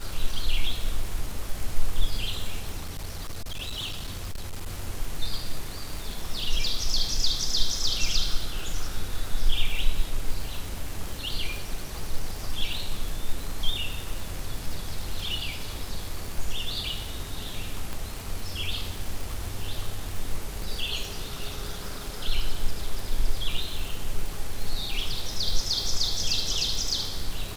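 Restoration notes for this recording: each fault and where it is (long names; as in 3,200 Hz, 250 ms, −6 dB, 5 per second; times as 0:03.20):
surface crackle 200 per second −31 dBFS
0:02.77–0:04.69: clipping −28.5 dBFS
0:17.93: click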